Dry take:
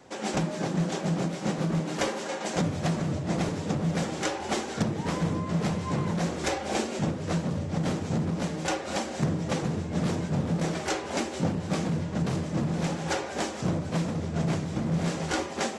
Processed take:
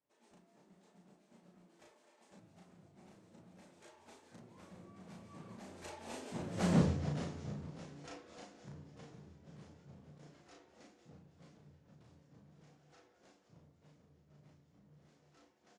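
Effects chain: Doppler pass-by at 6.77, 33 m/s, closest 2.6 m; doubler 35 ms -2.5 dB

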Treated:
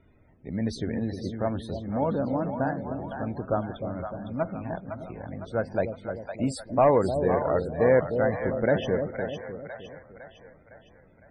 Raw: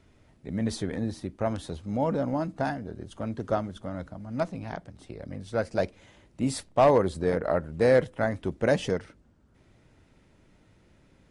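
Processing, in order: split-band echo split 640 Hz, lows 0.304 s, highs 0.508 s, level -6.5 dB; loudest bins only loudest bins 64

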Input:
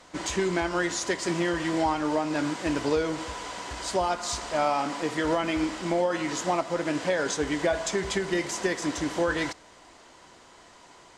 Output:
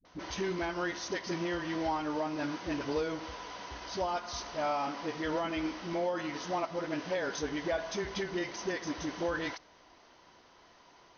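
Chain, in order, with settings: Chebyshev low-pass 6300 Hz, order 10; dispersion highs, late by 50 ms, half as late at 350 Hz; gain -6.5 dB

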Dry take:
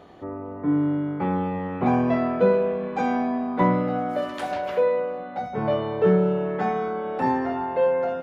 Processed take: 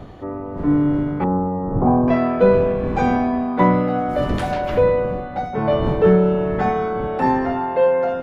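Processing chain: wind noise 220 Hz -34 dBFS; 1.24–2.08 LPF 1100 Hz 24 dB/oct; gain +5 dB

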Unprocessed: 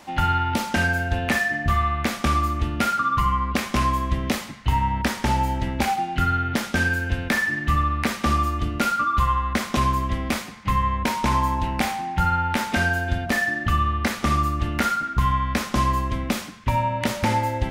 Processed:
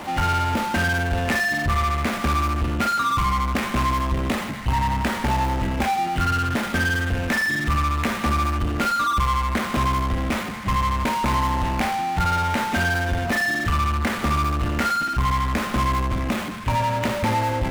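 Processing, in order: median filter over 9 samples; power-law curve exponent 0.5; gain -3.5 dB

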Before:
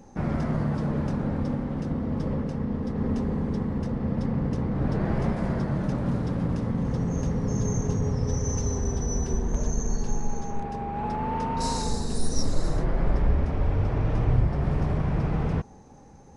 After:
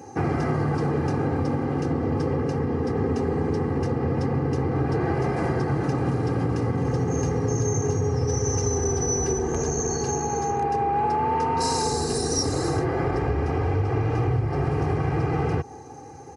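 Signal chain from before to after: HPF 94 Hz 24 dB/oct; bell 3500 Hz -11 dB 0.2 oct; comb 2.5 ms, depth 79%; compressor, threshold -28 dBFS, peak gain reduction 9.5 dB; gain +8 dB

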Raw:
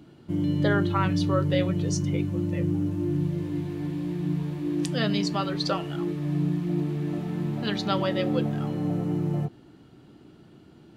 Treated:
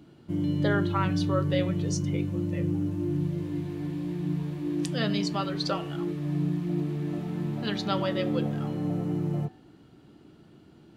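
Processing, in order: de-hum 126.1 Hz, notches 29; gain -2 dB

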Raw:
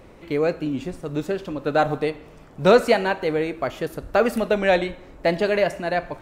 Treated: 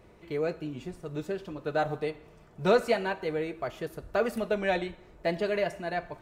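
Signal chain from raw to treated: notch comb 270 Hz; gain -7.5 dB

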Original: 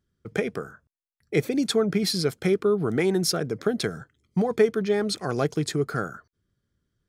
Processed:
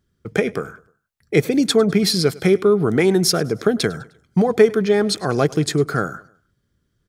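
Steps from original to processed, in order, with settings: feedback echo 0.102 s, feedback 43%, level -22 dB; gain +7 dB

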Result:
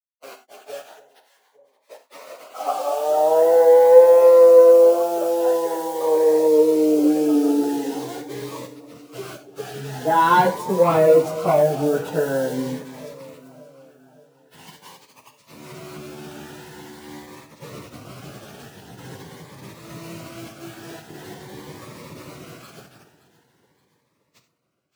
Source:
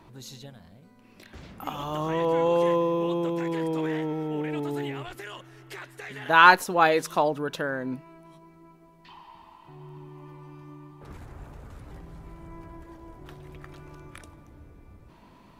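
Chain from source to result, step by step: Wiener smoothing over 9 samples; graphic EQ 125/500/2000/4000 Hz +3/+7/-9/-7 dB; overdrive pedal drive 17 dB, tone 1200 Hz, clips at -4 dBFS; bit-crush 6-bit; high-pass sweep 620 Hz -> 130 Hz, 3.74–5.26; plain phase-vocoder stretch 1.6×; on a send: echo with dull and thin repeats by turns 0.286 s, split 900 Hz, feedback 68%, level -14 dB; on the sum: non-linear reverb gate 0.11 s flat, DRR 7.5 dB; cascading phaser rising 0.45 Hz; gain +2.5 dB

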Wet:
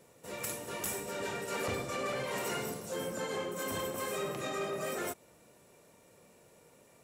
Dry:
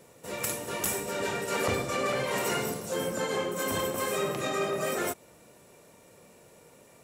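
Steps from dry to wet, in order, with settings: soft clip -20 dBFS, distortion -23 dB; gain -5.5 dB

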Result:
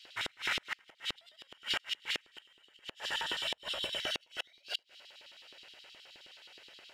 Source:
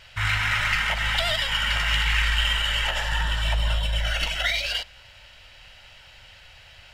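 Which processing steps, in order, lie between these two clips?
LFO high-pass square 9.5 Hz 380–3700 Hz; flipped gate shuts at -14 dBFS, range -33 dB; gain -7 dB

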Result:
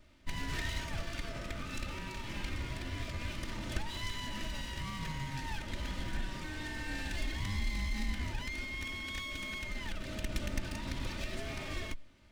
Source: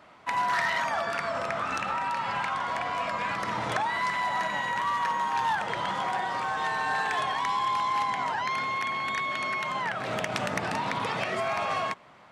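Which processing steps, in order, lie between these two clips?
minimum comb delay 3.3 ms; passive tone stack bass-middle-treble 10-0-1; gain +15 dB

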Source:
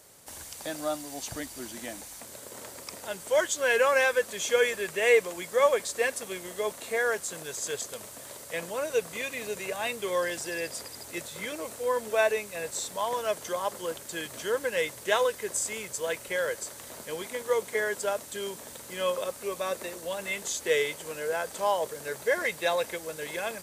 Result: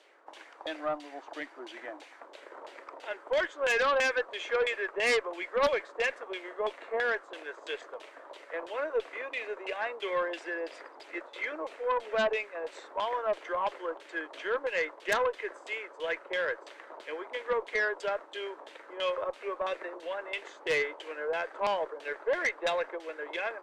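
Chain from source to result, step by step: elliptic high-pass 310 Hz, stop band 50 dB; LFO low-pass saw down 3 Hz 870–3400 Hz; added harmonics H 3 -14 dB, 4 -18 dB, 5 -11 dB, 6 -20 dB, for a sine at -8.5 dBFS; gain -7.5 dB

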